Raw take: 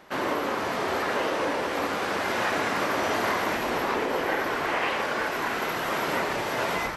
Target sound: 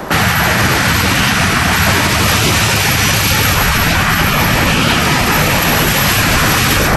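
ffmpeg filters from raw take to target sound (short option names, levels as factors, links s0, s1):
-filter_complex "[0:a]afftfilt=real='re*lt(hypot(re,im),0.0708)':imag='im*lt(hypot(re,im),0.0708)':win_size=1024:overlap=0.75,bandreject=f=2100:w=27,acrossover=split=180|850|3400[s0][s1][s2][s3];[s0]acontrast=34[s4];[s4][s1][s2][s3]amix=inputs=4:normalize=0,equalizer=f=3100:t=o:w=1.9:g=-7.5,alimiter=level_in=31.6:limit=0.891:release=50:level=0:latency=1,volume=0.891"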